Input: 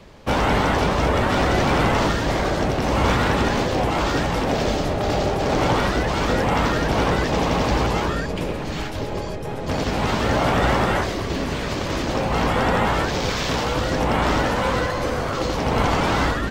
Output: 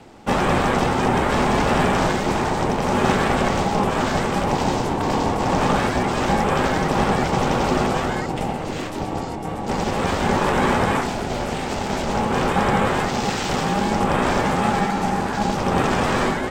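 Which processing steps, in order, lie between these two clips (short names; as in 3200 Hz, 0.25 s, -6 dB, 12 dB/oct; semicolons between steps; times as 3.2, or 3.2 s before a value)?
thirty-one-band EQ 500 Hz +7 dB, 4000 Hz -3 dB, 8000 Hz +7 dB; ring modulator 310 Hz; gain +2 dB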